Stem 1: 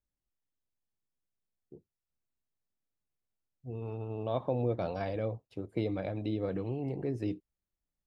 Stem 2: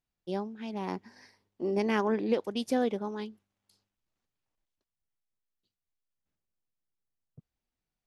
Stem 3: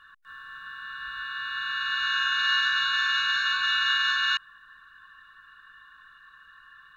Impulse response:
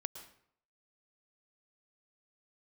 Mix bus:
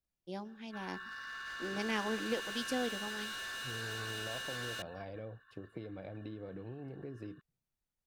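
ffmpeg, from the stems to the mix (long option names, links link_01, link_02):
-filter_complex "[0:a]acompressor=threshold=-39dB:ratio=6,volume=-3dB[link_01];[1:a]bandreject=frequency=400:width=12,adynamicequalizer=threshold=0.00447:dfrequency=1800:dqfactor=0.7:tfrequency=1800:tqfactor=0.7:attack=5:release=100:ratio=0.375:range=4:mode=boostabove:tftype=highshelf,volume=-9.5dB,asplit=2[link_02][link_03];[link_03]volume=-13dB[link_04];[2:a]agate=range=-11dB:threshold=-49dB:ratio=16:detection=peak,acompressor=threshold=-28dB:ratio=4,asoftclip=type=hard:threshold=-36.5dB,adelay=450,volume=-4.5dB[link_05];[3:a]atrim=start_sample=2205[link_06];[link_04][link_06]afir=irnorm=-1:irlink=0[link_07];[link_01][link_02][link_05][link_07]amix=inputs=4:normalize=0"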